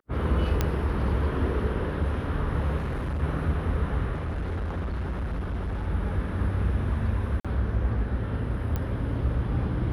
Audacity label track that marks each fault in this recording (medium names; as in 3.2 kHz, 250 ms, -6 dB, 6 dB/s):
0.610000	0.610000	pop -10 dBFS
2.770000	3.230000	clipped -26.5 dBFS
4.120000	5.880000	clipped -26.5 dBFS
7.400000	7.450000	dropout 46 ms
8.760000	8.760000	pop -17 dBFS